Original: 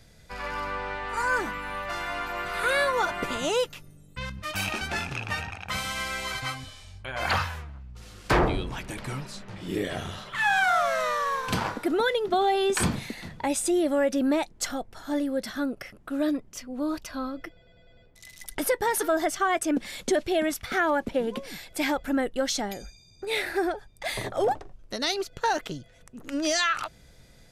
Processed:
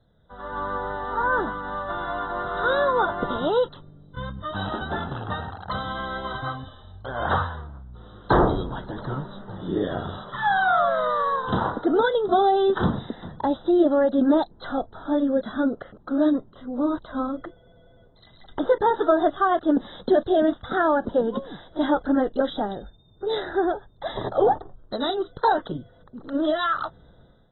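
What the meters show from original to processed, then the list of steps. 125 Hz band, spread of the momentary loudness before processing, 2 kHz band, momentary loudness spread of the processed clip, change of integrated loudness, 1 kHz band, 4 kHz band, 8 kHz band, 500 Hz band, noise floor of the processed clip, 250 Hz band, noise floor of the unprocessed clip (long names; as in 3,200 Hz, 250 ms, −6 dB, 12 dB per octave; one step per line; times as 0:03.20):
+3.5 dB, 14 LU, −1.5 dB, 14 LU, +3.5 dB, +4.5 dB, −4.0 dB, below −40 dB, +5.0 dB, −54 dBFS, +5.0 dB, −55 dBFS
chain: low-shelf EQ 79 Hz −5.5 dB
automatic gain control gain up to 11.5 dB
pitch vibrato 4.7 Hz 15 cents
Butterworth band-reject 2,400 Hz, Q 0.94
level −6 dB
AAC 16 kbit/s 24,000 Hz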